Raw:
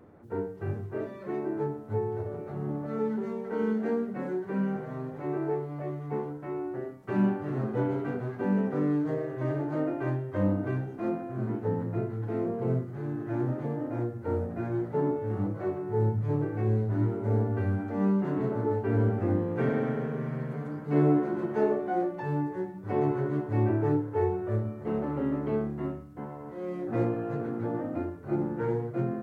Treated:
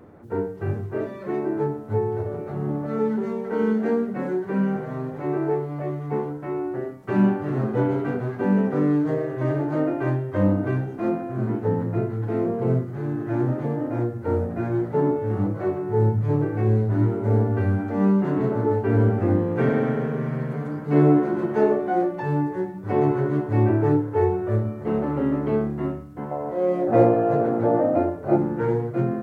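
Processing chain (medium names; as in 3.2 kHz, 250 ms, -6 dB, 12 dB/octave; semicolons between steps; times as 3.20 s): 26.31–28.38 s: peaking EQ 620 Hz +13 dB 0.95 oct; trim +6.5 dB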